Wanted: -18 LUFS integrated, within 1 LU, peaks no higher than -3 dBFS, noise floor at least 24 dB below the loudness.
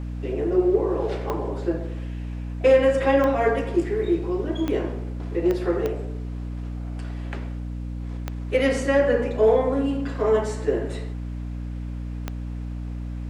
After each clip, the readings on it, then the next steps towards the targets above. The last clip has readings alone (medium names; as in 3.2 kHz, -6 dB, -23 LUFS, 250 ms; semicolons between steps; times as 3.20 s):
clicks found 7; hum 60 Hz; highest harmonic 300 Hz; hum level -28 dBFS; loudness -24.5 LUFS; peak level -7.5 dBFS; loudness target -18.0 LUFS
-> de-click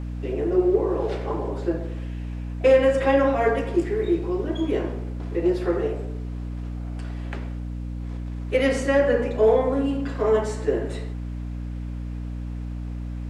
clicks found 0; hum 60 Hz; highest harmonic 300 Hz; hum level -28 dBFS
-> hum notches 60/120/180/240/300 Hz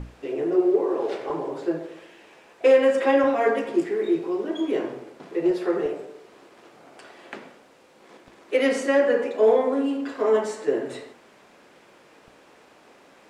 hum not found; loudness -23.0 LUFS; peak level -8.5 dBFS; loudness target -18.0 LUFS
-> trim +5 dB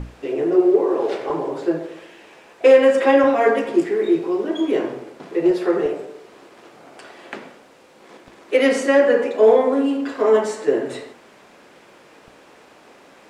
loudness -18.0 LUFS; peak level -3.5 dBFS; noise floor -49 dBFS